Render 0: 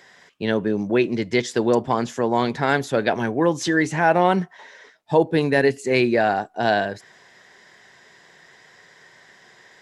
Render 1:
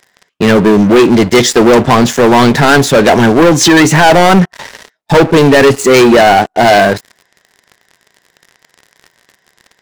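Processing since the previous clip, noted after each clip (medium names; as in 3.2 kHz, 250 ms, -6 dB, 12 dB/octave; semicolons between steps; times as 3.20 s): waveshaping leveller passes 5; trim +3 dB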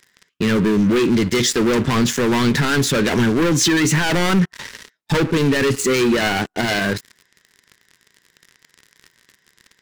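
peaking EQ 700 Hz -13.5 dB 0.94 oct; peak limiter -7 dBFS, peak gain reduction 7.5 dB; trim -3.5 dB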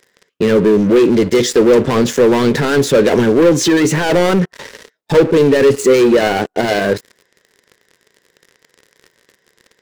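peaking EQ 500 Hz +13.5 dB 1.2 oct; trim -1 dB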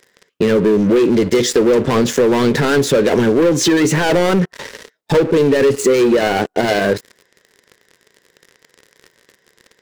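compression 2.5:1, threshold -13 dBFS, peak gain reduction 6 dB; trim +1.5 dB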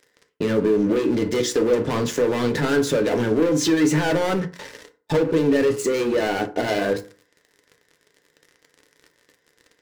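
FDN reverb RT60 0.39 s, low-frequency decay 1×, high-frequency decay 0.55×, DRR 5.5 dB; trim -8 dB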